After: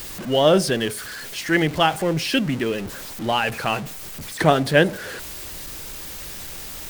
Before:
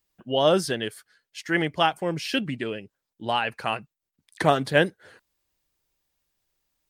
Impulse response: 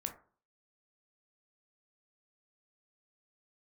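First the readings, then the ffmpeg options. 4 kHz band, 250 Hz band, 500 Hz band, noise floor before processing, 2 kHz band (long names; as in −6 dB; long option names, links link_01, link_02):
+4.5 dB, +6.5 dB, +4.5 dB, −85 dBFS, +4.5 dB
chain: -filter_complex "[0:a]aeval=exprs='val(0)+0.5*0.0266*sgn(val(0))':channel_layout=same,asplit=2[link_01][link_02];[1:a]atrim=start_sample=2205,asetrate=37926,aresample=44100,lowpass=frequency=1000:width=0.5412,lowpass=frequency=1000:width=1.3066[link_03];[link_02][link_03]afir=irnorm=-1:irlink=0,volume=-11dB[link_04];[link_01][link_04]amix=inputs=2:normalize=0,volume=3dB"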